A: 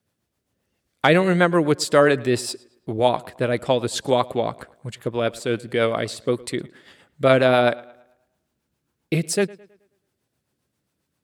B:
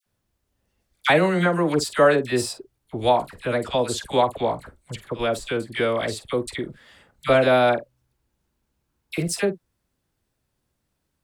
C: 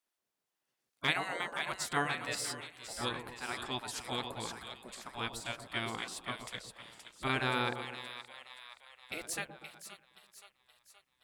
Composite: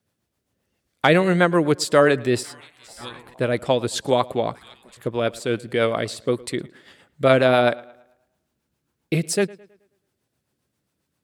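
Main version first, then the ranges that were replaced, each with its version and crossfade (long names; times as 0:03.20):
A
0:02.43–0:03.34: punch in from C
0:04.55–0:04.97: punch in from C
not used: B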